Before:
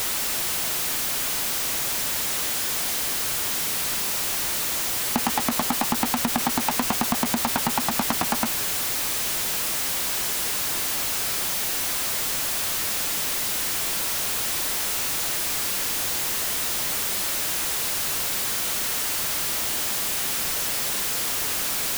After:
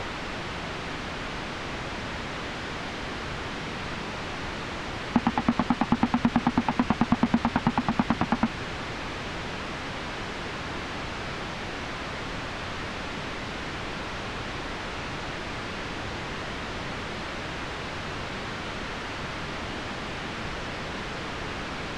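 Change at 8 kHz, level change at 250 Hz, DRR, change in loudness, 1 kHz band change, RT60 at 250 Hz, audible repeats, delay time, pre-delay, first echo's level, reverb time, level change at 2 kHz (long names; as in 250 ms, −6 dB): −23.5 dB, +4.5 dB, no reverb audible, −8.0 dB, −1.0 dB, no reverb audible, no echo audible, no echo audible, no reverb audible, no echo audible, no reverb audible, −2.0 dB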